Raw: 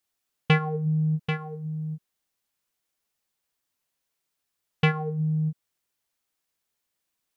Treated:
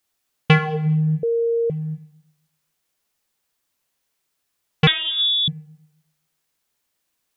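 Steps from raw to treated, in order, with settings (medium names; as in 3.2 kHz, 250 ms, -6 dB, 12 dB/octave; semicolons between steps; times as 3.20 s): Schroeder reverb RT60 0.89 s, combs from 29 ms, DRR 11 dB; 1.23–1.70 s: bleep 464 Hz -23 dBFS; 4.87–5.48 s: frequency inversion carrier 3.6 kHz; trim +6 dB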